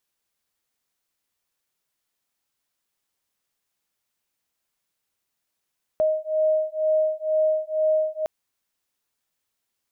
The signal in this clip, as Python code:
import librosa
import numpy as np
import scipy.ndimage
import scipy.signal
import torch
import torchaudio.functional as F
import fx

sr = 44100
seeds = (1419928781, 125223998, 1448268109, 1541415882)

y = fx.two_tone_beats(sr, length_s=2.26, hz=623.0, beat_hz=2.1, level_db=-22.5)